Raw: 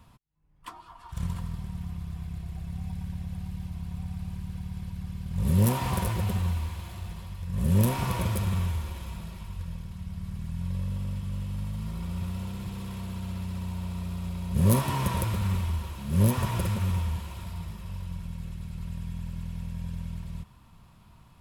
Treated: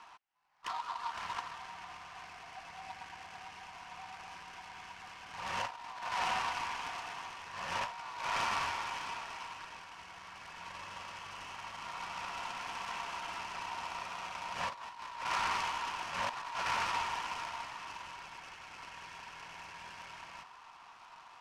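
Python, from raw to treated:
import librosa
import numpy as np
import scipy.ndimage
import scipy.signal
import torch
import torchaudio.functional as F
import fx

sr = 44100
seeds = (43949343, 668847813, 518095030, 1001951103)

y = scipy.signal.sosfilt(scipy.signal.ellip(3, 1.0, 40, [760.0, 3000.0], 'bandpass', fs=sr, output='sos'), x)
y = fx.air_absorb(y, sr, metres=67.0)
y = fx.over_compress(y, sr, threshold_db=-43.0, ratio=-0.5)
y = fx.noise_mod_delay(y, sr, seeds[0], noise_hz=2500.0, depth_ms=0.033)
y = y * librosa.db_to_amplitude(8.0)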